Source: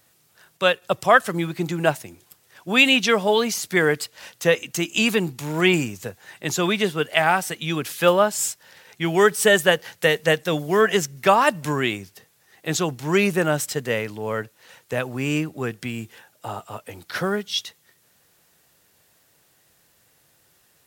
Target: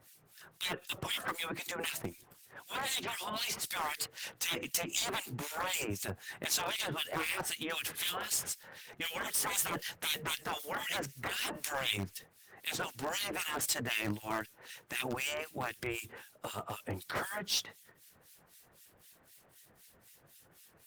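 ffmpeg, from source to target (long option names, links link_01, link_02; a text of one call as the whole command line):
ffmpeg -i in.wav -filter_complex "[0:a]afftfilt=real='re*lt(hypot(re,im),0.141)':imag='im*lt(hypot(re,im),0.141)':win_size=1024:overlap=0.75,acrossover=split=1900[link_01][link_02];[link_01]aeval=exprs='val(0)*(1-1/2+1/2*cos(2*PI*3.9*n/s))':channel_layout=same[link_03];[link_02]aeval=exprs='val(0)*(1-1/2-1/2*cos(2*PI*3.9*n/s))':channel_layout=same[link_04];[link_03][link_04]amix=inputs=2:normalize=0,asplit=2[link_05][link_06];[link_06]aeval=exprs='(mod(33.5*val(0)+1,2)-1)/33.5':channel_layout=same,volume=-7.5dB[link_07];[link_05][link_07]amix=inputs=2:normalize=0,volume=1.5dB" -ar 48000 -c:a libopus -b:a 20k out.opus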